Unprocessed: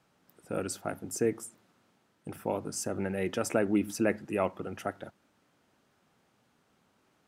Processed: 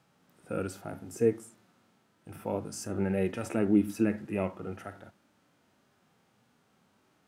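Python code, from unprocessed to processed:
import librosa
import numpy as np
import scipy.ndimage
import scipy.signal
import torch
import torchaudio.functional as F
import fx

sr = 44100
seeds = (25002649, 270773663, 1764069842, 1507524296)

y = fx.hpss(x, sr, part='percussive', gain_db=-16)
y = y * 10.0 ** (5.5 / 20.0)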